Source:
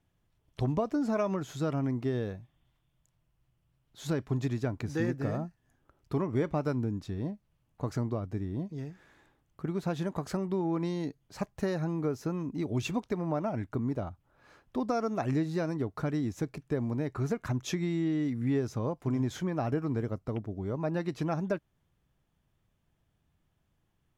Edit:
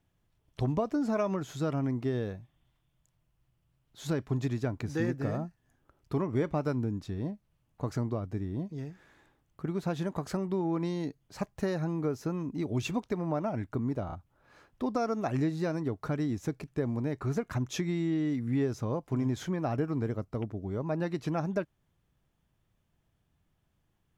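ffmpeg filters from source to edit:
ffmpeg -i in.wav -filter_complex "[0:a]asplit=3[link_01][link_02][link_03];[link_01]atrim=end=14.092[link_04];[link_02]atrim=start=14.058:end=14.092[link_05];[link_03]atrim=start=14.058[link_06];[link_04][link_05]acrossfade=duration=0.004:curve1=hsin:curve2=hsin[link_07];[link_07][link_06]acrossfade=duration=0.004:curve1=hsin:curve2=hsin" out.wav

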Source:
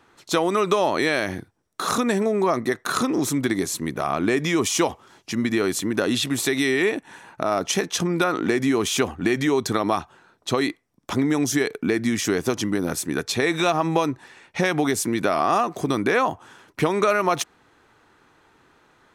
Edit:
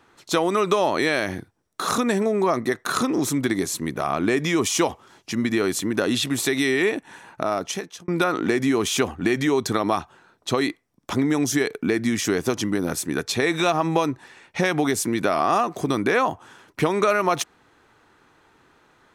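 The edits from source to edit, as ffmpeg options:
ffmpeg -i in.wav -filter_complex "[0:a]asplit=2[link_01][link_02];[link_01]atrim=end=8.08,asetpts=PTS-STARTPTS,afade=type=out:start_time=7.41:duration=0.67[link_03];[link_02]atrim=start=8.08,asetpts=PTS-STARTPTS,afade=type=in:duration=0.004:curve=hsin[link_04];[link_03][link_04]concat=n=2:v=0:a=1" out.wav

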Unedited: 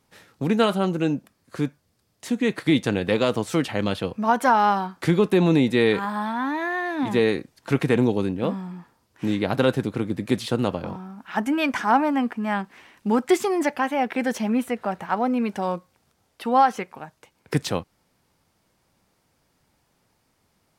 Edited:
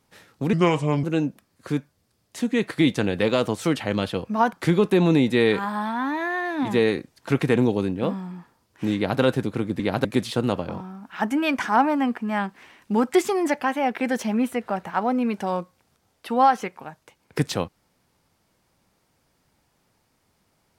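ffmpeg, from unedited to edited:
ffmpeg -i in.wav -filter_complex "[0:a]asplit=6[link_01][link_02][link_03][link_04][link_05][link_06];[link_01]atrim=end=0.534[link_07];[link_02]atrim=start=0.53:end=0.92,asetpts=PTS-STARTPTS,asetrate=33957,aresample=44100,atrim=end_sample=22336,asetpts=PTS-STARTPTS[link_08];[link_03]atrim=start=0.916:end=4.412[link_09];[link_04]atrim=start=4.928:end=10.202[link_10];[link_05]atrim=start=9.358:end=9.612[link_11];[link_06]atrim=start=10.198[link_12];[link_07][link_08]acrossfade=duration=0.004:curve1=hsin:curve2=hsin[link_13];[link_13][link_09]acrossfade=duration=0.004:curve1=hsin:curve2=hsin[link_14];[link_14][link_10]acrossfade=duration=0.004:curve1=hsin:curve2=hsin[link_15];[link_15][link_11]acrossfade=duration=0.004:curve1=hsin:curve2=hsin[link_16];[link_16][link_12]acrossfade=duration=0.004:curve1=hsin:curve2=hsin" out.wav

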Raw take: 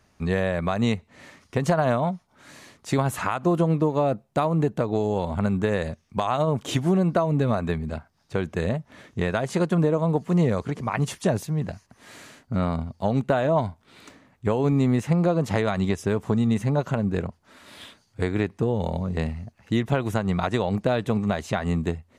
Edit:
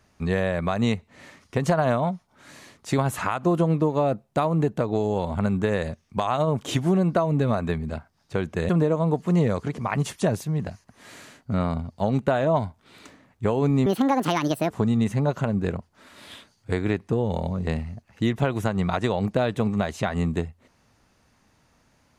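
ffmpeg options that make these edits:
ffmpeg -i in.wav -filter_complex "[0:a]asplit=4[link_01][link_02][link_03][link_04];[link_01]atrim=end=8.692[link_05];[link_02]atrim=start=9.708:end=14.884[link_06];[link_03]atrim=start=14.88:end=16.2,asetpts=PTS-STARTPTS,asetrate=69237,aresample=44100[link_07];[link_04]atrim=start=16.196[link_08];[link_05][link_06]acrossfade=duration=0.004:curve1=hsin:curve2=hsin[link_09];[link_09][link_07]acrossfade=duration=0.004:curve1=hsin:curve2=hsin[link_10];[link_10][link_08]acrossfade=duration=0.004:curve1=hsin:curve2=hsin" out.wav

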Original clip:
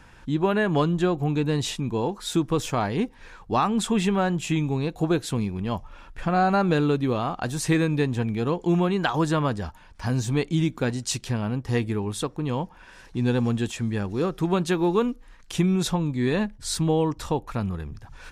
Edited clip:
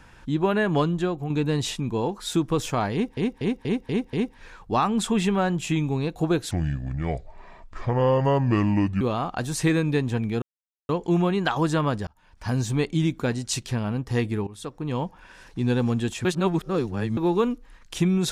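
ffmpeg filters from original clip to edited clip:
ffmpeg -i in.wav -filter_complex "[0:a]asplit=14[link_01][link_02][link_03][link_04][link_05][link_06][link_07][link_08][link_09][link_10][link_11][link_12][link_13][link_14];[link_01]atrim=end=1.3,asetpts=PTS-STARTPTS,afade=type=out:start_time=0.78:duration=0.52:silence=0.473151[link_15];[link_02]atrim=start=1.3:end=3.172,asetpts=PTS-STARTPTS,afade=type=in:duration=0.004:curve=hsin:silence=0.473151[link_16];[link_03]atrim=start=2.928:end=3.172[link_17];[link_04]atrim=start=2.928:end=3.172[link_18];[link_05]atrim=start=2.928:end=3.172[link_19];[link_06]atrim=start=2.928:end=3.172[link_20];[link_07]atrim=start=2.928:end=5.314[link_21];[link_08]atrim=start=5.31:end=7.06,asetpts=PTS-STARTPTS,asetrate=30870,aresample=44100[link_22];[link_09]atrim=start=7.056:end=8.47,asetpts=PTS-STARTPTS,afade=type=out:start_time=1.41:duration=0.004:curve=hsin,apad=pad_dur=0.47[link_23];[link_10]atrim=start=8.47:end=9.65,asetpts=PTS-STARTPTS,afade=type=in:duration=0.004:curve=hsin,afade=type=out:start_time=1.176:duration=0.004:curve=hsin[link_24];[link_11]atrim=start=9.65:end=12.05,asetpts=PTS-STARTPTS,afade=type=in:duration=0.42,afade=type=out:start_time=2.396:duration=0.004:curve=hsin:silence=0.141254[link_25];[link_12]atrim=start=12.05:end=13.832,asetpts=PTS-STARTPTS,afade=type=in:duration=0.5:silence=0.141254[link_26];[link_13]atrim=start=13.828:end=14.752,asetpts=PTS-STARTPTS,areverse[link_27];[link_14]atrim=start=14.748[link_28];[link_15][link_16]concat=n=2:v=0:a=1[link_29];[link_29][link_17]acrossfade=duration=0.004:curve1=hsin:curve2=hsin[link_30];[link_30][link_18]acrossfade=duration=0.004:curve1=hsin:curve2=hsin[link_31];[link_31][link_19]acrossfade=duration=0.004:curve1=hsin:curve2=hsin[link_32];[link_32][link_20]acrossfade=duration=0.004:curve1=hsin:curve2=hsin[link_33];[link_33][link_21]acrossfade=duration=0.004:curve1=hsin:curve2=hsin[link_34];[link_34][link_22]acrossfade=duration=0.004:curve1=hsin:curve2=hsin[link_35];[link_23][link_24][link_25][link_26]concat=n=4:v=0:a=1[link_36];[link_35][link_36]acrossfade=duration=0.004:curve1=hsin:curve2=hsin[link_37];[link_37][link_27]acrossfade=duration=0.004:curve1=hsin:curve2=hsin[link_38];[link_38][link_28]acrossfade=duration=0.004:curve1=hsin:curve2=hsin" out.wav

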